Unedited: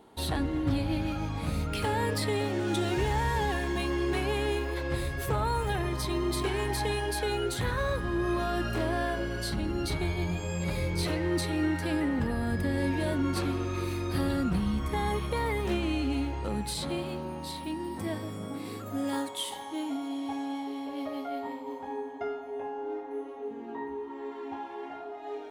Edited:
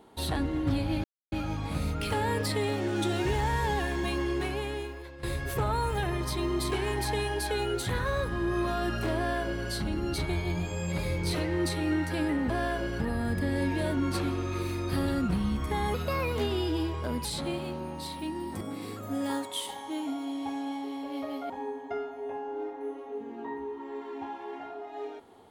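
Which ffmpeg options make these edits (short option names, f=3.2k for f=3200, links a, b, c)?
-filter_complex "[0:a]asplit=9[a][b][c][d][e][f][g][h][i];[a]atrim=end=1.04,asetpts=PTS-STARTPTS,afade=t=out:st=1.036:d=0.004:c=hsin,apad=pad_dur=0.28[j];[b]atrim=start=1.04:end=4.95,asetpts=PTS-STARTPTS,afade=t=in:d=0.004:c=hsin,afade=t=out:st=2.86:d=1.05:silence=0.141254[k];[c]atrim=start=4.95:end=12.222,asetpts=PTS-STARTPTS,afade=t=in:d=0.004:c=hsin:silence=0.141254[l];[d]atrim=start=8.878:end=9.382[m];[e]atrim=start=12.218:end=15.164[n];[f]atrim=start=15.16:end=16.69,asetpts=PTS-STARTPTS,asetrate=51597,aresample=44100,atrim=end_sample=57669,asetpts=PTS-STARTPTS[o];[g]atrim=start=16.686:end=18.052[p];[h]atrim=start=18.438:end=21.332[q];[i]atrim=start=21.798[r];[j][k][l]concat=n=3:v=0:a=1[s];[s][m]acrossfade=d=0.004:c1=hsin:c2=hsin[t];[t][n]acrossfade=d=0.004:c1=hsin:c2=hsin[u];[u][o]acrossfade=d=0.004:c1=hsin:c2=hsin[v];[v][p]acrossfade=d=0.004:c1=hsin:c2=hsin[w];[w][q]acrossfade=d=0.004:c1=hsin:c2=hsin[x];[x][r]acrossfade=d=0.004:c1=hsin:c2=hsin"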